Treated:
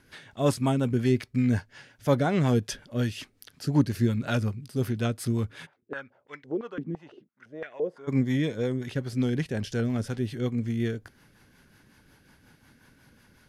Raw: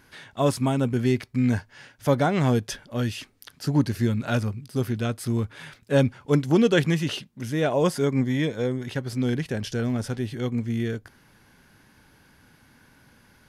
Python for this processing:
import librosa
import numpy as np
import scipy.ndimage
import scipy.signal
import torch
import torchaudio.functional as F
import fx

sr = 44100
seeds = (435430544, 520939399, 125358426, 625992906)

y = fx.rotary(x, sr, hz=5.5)
y = fx.filter_held_bandpass(y, sr, hz=5.9, low_hz=260.0, high_hz=1900.0, at=(5.65, 8.07), fade=0.02)